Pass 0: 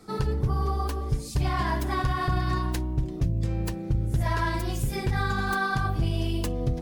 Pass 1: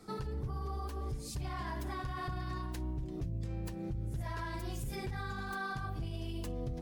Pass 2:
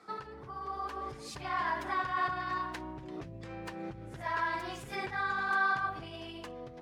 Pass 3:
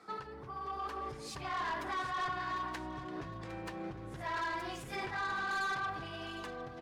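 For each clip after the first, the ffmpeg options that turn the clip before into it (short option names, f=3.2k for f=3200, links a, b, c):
-af "alimiter=level_in=2dB:limit=-24dB:level=0:latency=1:release=163,volume=-2dB,volume=-4.5dB"
-af "dynaudnorm=f=310:g=5:m=6dB,bandpass=f=1.4k:t=q:w=0.87:csg=0,volume=5.5dB"
-af "asoftclip=type=tanh:threshold=-32dB,aecho=1:1:758|1516|2274:0.224|0.0784|0.0274"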